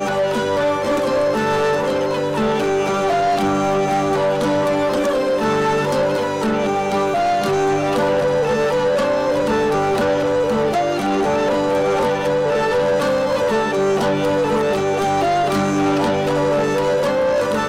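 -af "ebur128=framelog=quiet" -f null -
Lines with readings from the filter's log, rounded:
Integrated loudness:
  I:         -18.0 LUFS
  Threshold: -28.0 LUFS
Loudness range:
  LRA:         0.6 LU
  Threshold: -38.0 LUFS
  LRA low:   -18.3 LUFS
  LRA high:  -17.8 LUFS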